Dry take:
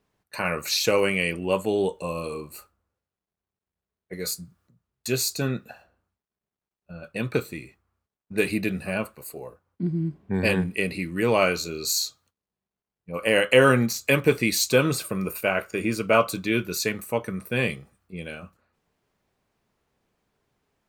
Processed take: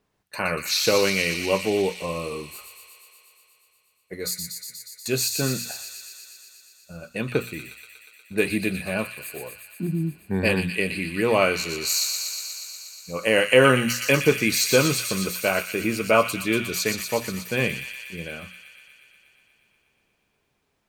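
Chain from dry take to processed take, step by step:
mains-hum notches 60/120/180/240 Hz
delay with a high-pass on its return 120 ms, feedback 78%, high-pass 2,600 Hz, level −4.5 dB
level +1 dB

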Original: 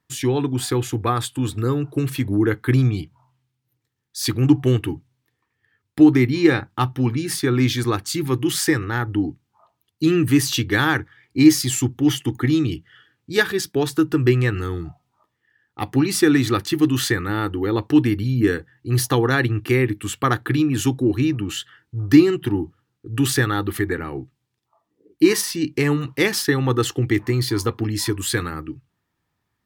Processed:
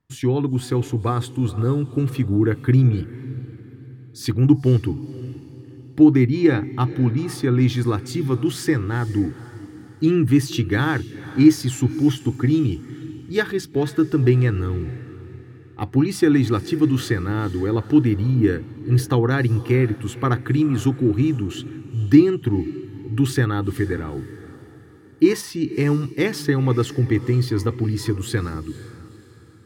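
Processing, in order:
spectral tilt −2 dB per octave
on a send: feedback delay with all-pass diffusion 489 ms, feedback 41%, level −16 dB
on the sum: level −3.5 dB

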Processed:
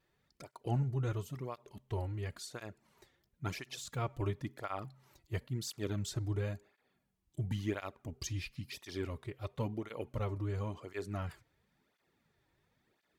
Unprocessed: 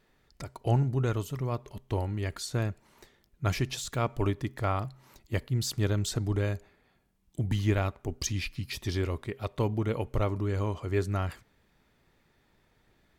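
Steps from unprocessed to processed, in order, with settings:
through-zero flanger with one copy inverted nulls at 0.96 Hz, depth 5 ms
level −5.5 dB

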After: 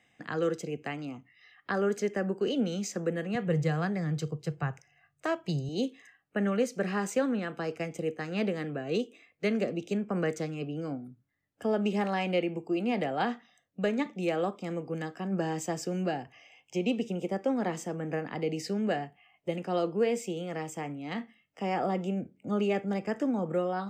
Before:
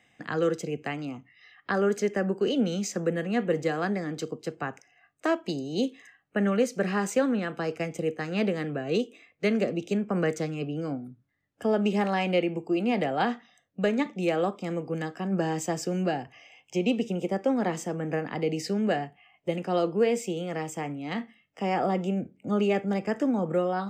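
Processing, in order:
0:03.35–0:05.69: low shelf with overshoot 190 Hz +7.5 dB, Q 3
level −3.5 dB

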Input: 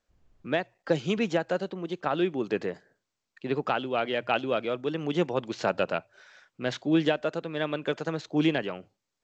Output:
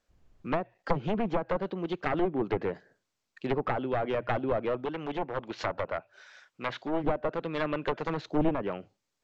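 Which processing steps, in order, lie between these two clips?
wavefolder on the positive side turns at −25.5 dBFS
treble cut that deepens with the level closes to 950 Hz, closed at −24.5 dBFS
0:04.85–0:07.04: low-shelf EQ 430 Hz −8.5 dB
level +1.5 dB

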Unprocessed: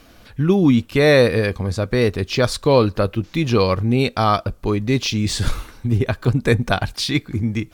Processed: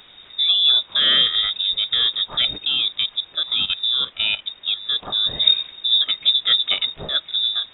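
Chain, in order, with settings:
hearing-aid frequency compression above 2,400 Hz 1.5 to 1
low-shelf EQ 200 Hz +7 dB
0:02.65–0:05.07: output level in coarse steps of 15 dB
background noise white −41 dBFS
voice inversion scrambler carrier 3,700 Hz
level −5.5 dB

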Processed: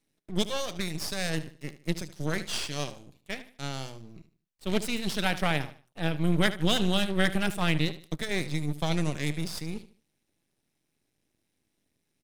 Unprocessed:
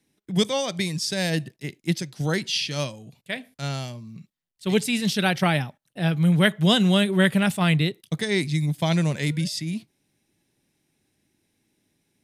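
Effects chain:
repeating echo 75 ms, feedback 31%, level −14 dB
half-wave rectification
level −3 dB

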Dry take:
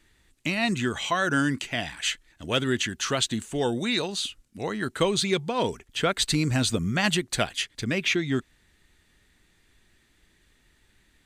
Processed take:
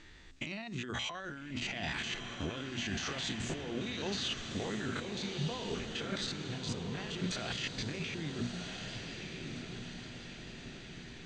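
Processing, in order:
spectrum averaged block by block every 50 ms
inverse Chebyshev low-pass filter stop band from 11,000 Hz, stop band 40 dB
mains-hum notches 60/120/180/240 Hz
compressor whose output falls as the input rises −39 dBFS, ratio −1
brickwall limiter −27.5 dBFS, peak gain reduction 10.5 dB
on a send: feedback delay with all-pass diffusion 1,296 ms, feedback 56%, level −5 dB

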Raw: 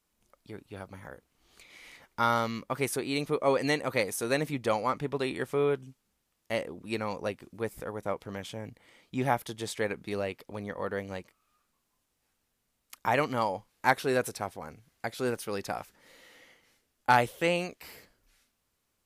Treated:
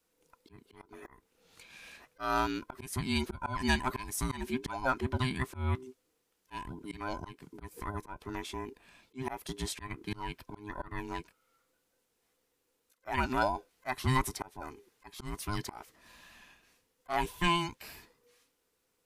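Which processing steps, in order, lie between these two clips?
frequency inversion band by band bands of 500 Hz
volume swells 223 ms

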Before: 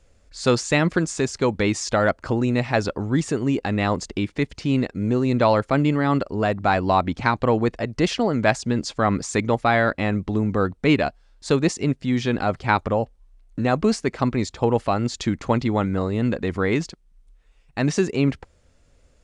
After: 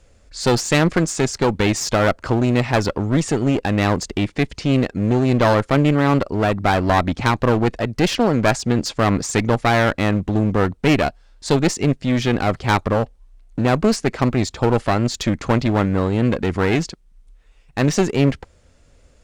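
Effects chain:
asymmetric clip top −27 dBFS, bottom −9.5 dBFS
level +5.5 dB

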